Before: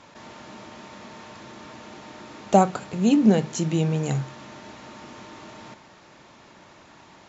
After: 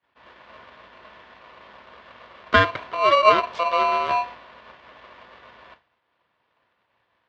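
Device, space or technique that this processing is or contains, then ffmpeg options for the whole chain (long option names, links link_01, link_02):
ring modulator pedal into a guitar cabinet: -af "agate=range=-33dB:threshold=-37dB:ratio=3:detection=peak,aeval=exprs='val(0)*sgn(sin(2*PI*850*n/s))':channel_layout=same,highpass=95,equalizer=frequency=170:width_type=q:width=4:gain=-6,equalizer=frequency=260:width_type=q:width=4:gain=-6,equalizer=frequency=910:width_type=q:width=4:gain=8,lowpass=frequency=3600:width=0.5412,lowpass=frequency=3600:width=1.3066"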